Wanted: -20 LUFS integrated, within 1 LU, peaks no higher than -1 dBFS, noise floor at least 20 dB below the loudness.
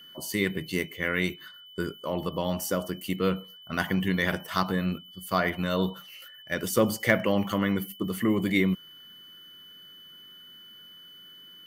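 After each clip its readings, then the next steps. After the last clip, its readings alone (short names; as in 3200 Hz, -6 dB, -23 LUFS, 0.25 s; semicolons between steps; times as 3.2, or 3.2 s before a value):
steady tone 3000 Hz; tone level -47 dBFS; loudness -28.5 LUFS; peak -6.5 dBFS; loudness target -20.0 LUFS
-> notch 3000 Hz, Q 30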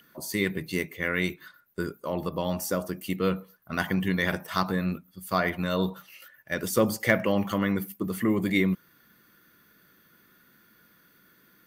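steady tone none; loudness -28.5 LUFS; peak -6.0 dBFS; loudness target -20.0 LUFS
-> gain +8.5 dB; limiter -1 dBFS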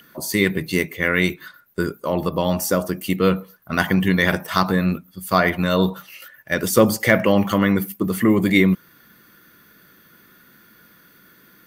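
loudness -20.0 LUFS; peak -1.0 dBFS; noise floor -53 dBFS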